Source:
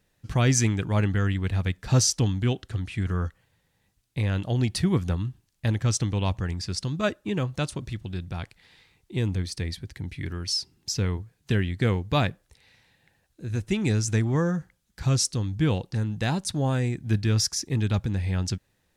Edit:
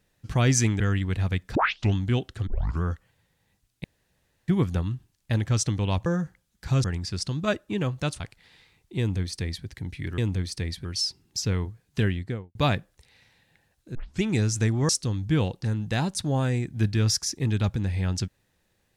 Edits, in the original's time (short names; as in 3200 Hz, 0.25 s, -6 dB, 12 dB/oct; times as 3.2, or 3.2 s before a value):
0.8–1.14 cut
1.89 tape start 0.39 s
2.81 tape start 0.35 s
4.18–4.82 room tone
7.76–8.39 cut
9.18–9.85 copy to 10.37
11.57–12.07 studio fade out
13.47 tape start 0.26 s
14.41–15.19 move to 6.4